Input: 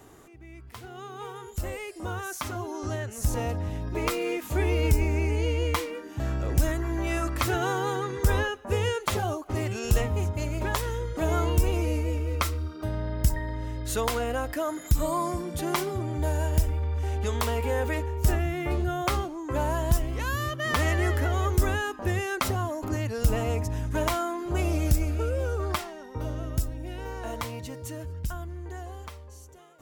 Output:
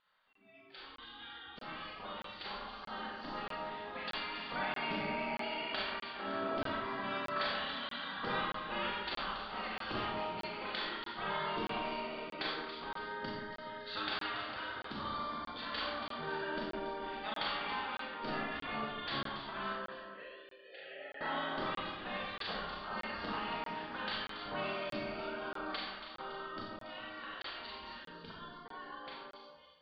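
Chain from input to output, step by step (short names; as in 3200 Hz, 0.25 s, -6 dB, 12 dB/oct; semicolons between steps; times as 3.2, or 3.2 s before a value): in parallel at -2 dB: compressor, threshold -35 dBFS, peak gain reduction 18 dB; on the sum: spectral gate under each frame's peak -15 dB weak; vibrato 1.2 Hz 5.6 cents; 19.72–21.21 vowel filter e; on a send: echo with dull and thin repeats by turns 0.14 s, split 2000 Hz, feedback 68%, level -6 dB; on the sum: spectral noise reduction 15 dB; rippled Chebyshev low-pass 4700 Hz, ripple 6 dB; Schroeder reverb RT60 0.68 s, combs from 29 ms, DRR -2.5 dB; crackling interface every 0.63 s, samples 1024, zero, from 0.33; gain -3.5 dB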